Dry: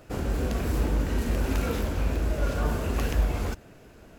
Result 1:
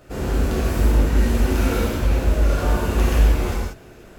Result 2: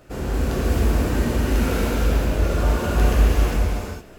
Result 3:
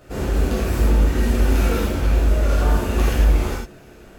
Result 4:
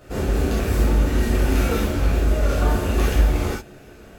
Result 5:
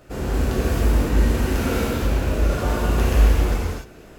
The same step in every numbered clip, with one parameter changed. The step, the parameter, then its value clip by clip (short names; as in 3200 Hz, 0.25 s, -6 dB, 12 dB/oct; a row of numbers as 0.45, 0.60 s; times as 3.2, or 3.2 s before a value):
non-linear reverb, gate: 210, 490, 130, 90, 320 ms